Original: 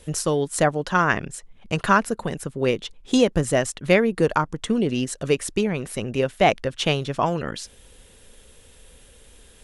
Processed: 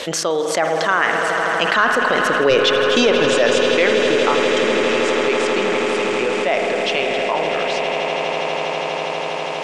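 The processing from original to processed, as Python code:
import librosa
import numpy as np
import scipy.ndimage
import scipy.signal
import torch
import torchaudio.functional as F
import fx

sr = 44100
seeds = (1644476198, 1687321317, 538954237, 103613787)

p1 = fx.doppler_pass(x, sr, speed_mps=23, closest_m=5.2, pass_at_s=2.68)
p2 = scipy.signal.sosfilt(scipy.signal.butter(2, 440.0, 'highpass', fs=sr, output='sos'), p1)
p3 = fx.high_shelf(p2, sr, hz=2800.0, db=8.0)
p4 = fx.fold_sine(p3, sr, drive_db=7, ceiling_db=-9.5)
p5 = fx.air_absorb(p4, sr, metres=170.0)
p6 = p5 + fx.echo_swell(p5, sr, ms=81, loudest=8, wet_db=-15.0, dry=0)
p7 = fx.rev_spring(p6, sr, rt60_s=1.5, pass_ms=(50,), chirp_ms=75, drr_db=8.5)
p8 = fx.env_flatten(p7, sr, amount_pct=70)
y = p8 * librosa.db_to_amplitude(1.5)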